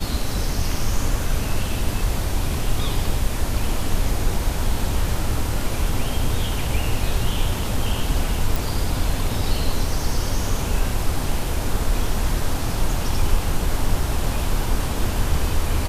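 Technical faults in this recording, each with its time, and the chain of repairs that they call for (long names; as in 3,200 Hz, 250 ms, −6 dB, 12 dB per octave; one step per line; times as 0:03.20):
0:08.56: click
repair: click removal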